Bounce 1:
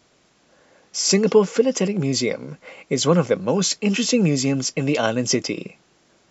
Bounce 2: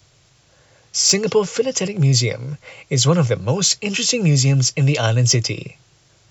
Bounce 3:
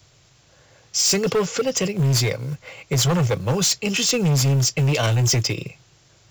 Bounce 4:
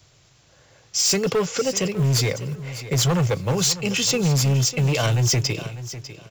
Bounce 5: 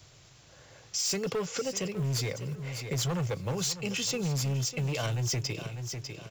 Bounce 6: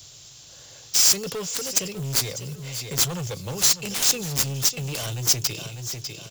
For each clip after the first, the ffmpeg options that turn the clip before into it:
ffmpeg -i in.wav -filter_complex "[0:a]lowshelf=frequency=160:width_type=q:width=3:gain=10,acrossover=split=240|650|2700[link_01][link_02][link_03][link_04];[link_04]acontrast=59[link_05];[link_01][link_02][link_03][link_05]amix=inputs=4:normalize=0" out.wav
ffmpeg -i in.wav -af "asoftclip=type=hard:threshold=-15.5dB,acrusher=bits=7:mode=log:mix=0:aa=0.000001" out.wav
ffmpeg -i in.wav -af "aecho=1:1:599|1198:0.2|0.0439,volume=-1dB" out.wav
ffmpeg -i in.wav -af "acompressor=threshold=-38dB:ratio=2" out.wav
ffmpeg -i in.wav -af "aexciter=amount=3.9:drive=5:freq=3000,aeval=exprs='0.376*(cos(1*acos(clip(val(0)/0.376,-1,1)))-cos(1*PI/2))+0.119*(cos(7*acos(clip(val(0)/0.376,-1,1)))-cos(7*PI/2))':channel_layout=same" out.wav

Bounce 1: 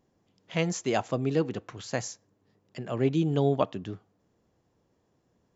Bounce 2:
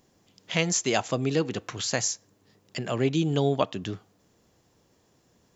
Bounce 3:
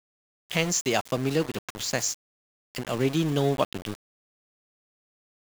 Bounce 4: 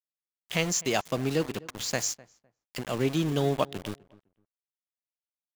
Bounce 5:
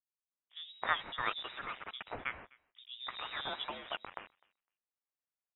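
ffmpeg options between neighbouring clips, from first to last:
ffmpeg -i in.wav -filter_complex "[0:a]highshelf=frequency=2300:gain=11,asplit=2[link_01][link_02];[link_02]acompressor=threshold=-33dB:ratio=6,volume=3dB[link_03];[link_01][link_03]amix=inputs=2:normalize=0,volume=-2.5dB" out.wav
ffmpeg -i in.wav -af "aeval=exprs='val(0)*gte(abs(val(0)),0.0266)':channel_layout=same" out.wav
ffmpeg -i in.wav -filter_complex "[0:a]asplit=2[link_01][link_02];[link_02]adelay=254,lowpass=frequency=1500:poles=1,volume=-21dB,asplit=2[link_03][link_04];[link_04]adelay=254,lowpass=frequency=1500:poles=1,volume=0.2[link_05];[link_01][link_03][link_05]amix=inputs=3:normalize=0,volume=-2dB" out.wav
ffmpeg -i in.wav -filter_complex "[0:a]aderivative,acrossover=split=230|880[link_01][link_02][link_03];[link_01]adelay=130[link_04];[link_03]adelay=320[link_05];[link_04][link_02][link_05]amix=inputs=3:normalize=0,lowpass=frequency=3400:width_type=q:width=0.5098,lowpass=frequency=3400:width_type=q:width=0.6013,lowpass=frequency=3400:width_type=q:width=0.9,lowpass=frequency=3400:width_type=q:width=2.563,afreqshift=-4000,volume=8.5dB" out.wav

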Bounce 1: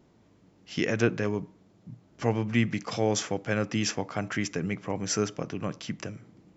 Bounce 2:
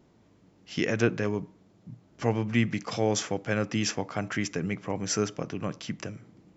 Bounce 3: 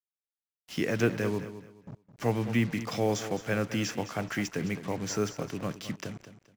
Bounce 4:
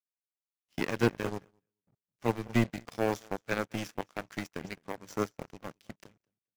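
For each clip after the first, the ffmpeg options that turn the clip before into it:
ffmpeg -i in.wav -af anull out.wav
ffmpeg -i in.wav -filter_complex "[0:a]acrossover=split=120|920|1900[link_01][link_02][link_03][link_04];[link_04]alimiter=level_in=0.5dB:limit=-24dB:level=0:latency=1:release=158,volume=-0.5dB[link_05];[link_01][link_02][link_03][link_05]amix=inputs=4:normalize=0,acrusher=bits=6:mix=0:aa=0.5,aecho=1:1:213|426|639:0.237|0.0617|0.016,volume=-1.5dB" out.wav
ffmpeg -i in.wav -af "aeval=exprs='0.237*(cos(1*acos(clip(val(0)/0.237,-1,1)))-cos(1*PI/2))+0.0376*(cos(2*acos(clip(val(0)/0.237,-1,1)))-cos(2*PI/2))+0.0335*(cos(7*acos(clip(val(0)/0.237,-1,1)))-cos(7*PI/2))+0.00211*(cos(8*acos(clip(val(0)/0.237,-1,1)))-cos(8*PI/2))':channel_layout=same" out.wav

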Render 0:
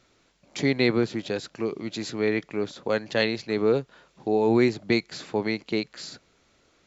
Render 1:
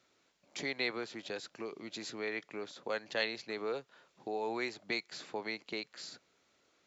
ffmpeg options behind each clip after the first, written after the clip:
ffmpeg -i in.wav -filter_complex "[0:a]highpass=frequency=290:poles=1,acrossover=split=540[link_01][link_02];[link_01]acompressor=threshold=-35dB:ratio=6[link_03];[link_03][link_02]amix=inputs=2:normalize=0,volume=-7.5dB" out.wav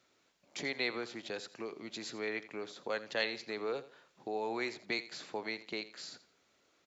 ffmpeg -i in.wav -af "aecho=1:1:84|168|252:0.168|0.0436|0.0113" out.wav

